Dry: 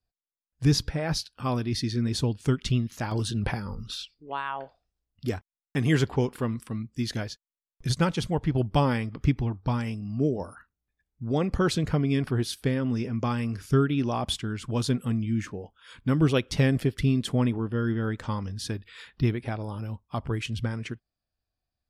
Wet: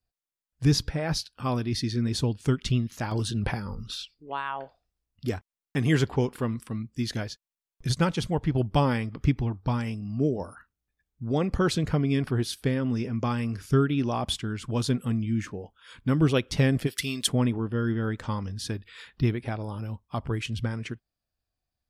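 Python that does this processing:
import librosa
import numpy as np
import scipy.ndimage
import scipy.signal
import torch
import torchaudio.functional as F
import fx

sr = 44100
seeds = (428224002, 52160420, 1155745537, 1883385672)

y = fx.tilt_eq(x, sr, slope=4.5, at=(16.86, 17.26), fade=0.02)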